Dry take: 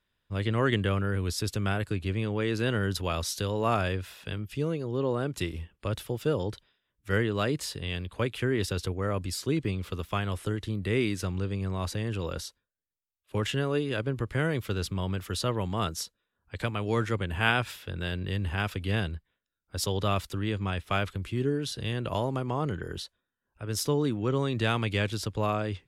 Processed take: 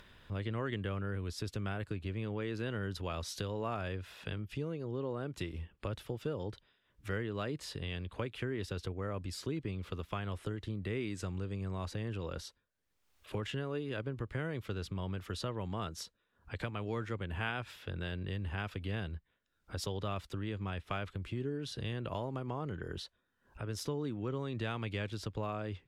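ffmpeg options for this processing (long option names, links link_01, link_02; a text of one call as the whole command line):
ffmpeg -i in.wav -filter_complex "[0:a]asettb=1/sr,asplit=3[link_01][link_02][link_03];[link_01]atrim=end=11.114[link_04];[link_02]atrim=start=11.11:end=11.86,asetpts=PTS-STARTPTS,afade=type=in:duration=0.004:curve=qsin,afade=type=out:start_time=0.746:duration=0.004:curve=qsin,equalizer=frequency=7700:width_type=o:width=0.39:gain=9.5[link_05];[link_03]atrim=start=11.856[link_06];[link_04][link_05]acrossfade=duration=0.004:curve1=hsin:curve2=qsin[link_07];[link_07][link_06]acrossfade=duration=0.004:curve1=qsin:curve2=hsin,acompressor=mode=upward:threshold=-42dB:ratio=2.5,highshelf=frequency=6200:gain=-11.5,acompressor=threshold=-40dB:ratio=2.5,volume=1dB" out.wav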